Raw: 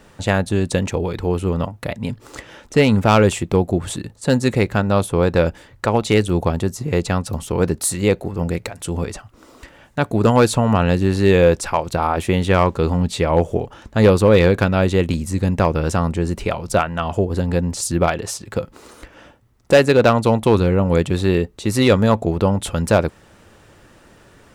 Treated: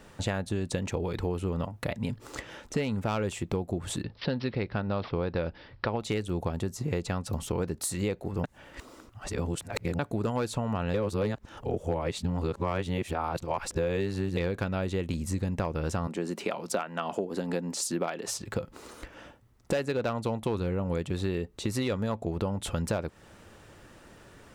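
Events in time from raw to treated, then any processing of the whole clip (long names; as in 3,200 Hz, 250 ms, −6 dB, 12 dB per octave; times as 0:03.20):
0:04.03–0:06.00: bad sample-rate conversion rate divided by 4×, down none, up filtered
0:08.44–0:09.99: reverse
0:10.94–0:14.37: reverse
0:16.07–0:18.28: high-pass filter 190 Hz 24 dB per octave
whole clip: downward compressor 6 to 1, threshold −23 dBFS; dynamic equaliser 9,800 Hz, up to −3 dB, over −53 dBFS, Q 2; level −4 dB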